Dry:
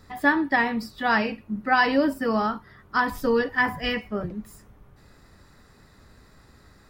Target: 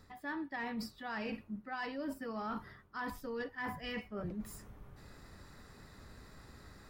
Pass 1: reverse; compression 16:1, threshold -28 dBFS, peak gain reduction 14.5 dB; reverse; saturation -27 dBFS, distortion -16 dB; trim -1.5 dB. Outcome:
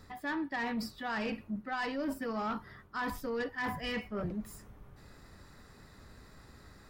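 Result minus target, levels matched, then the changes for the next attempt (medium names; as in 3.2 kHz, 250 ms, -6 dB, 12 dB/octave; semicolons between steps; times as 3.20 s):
compression: peak gain reduction -6.5 dB
change: compression 16:1, threshold -35 dBFS, peak gain reduction 21.5 dB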